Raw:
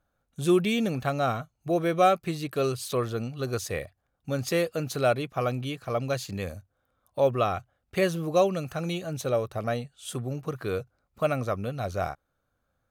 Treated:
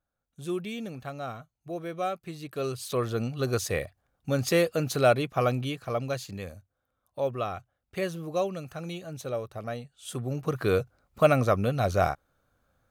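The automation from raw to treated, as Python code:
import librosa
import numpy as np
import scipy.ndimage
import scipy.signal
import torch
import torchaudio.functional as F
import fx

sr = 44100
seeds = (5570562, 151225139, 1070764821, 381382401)

y = fx.gain(x, sr, db=fx.line((2.19, -10.0), (3.26, 2.5), (5.48, 2.5), (6.55, -6.0), (9.82, -6.0), (10.64, 5.5)))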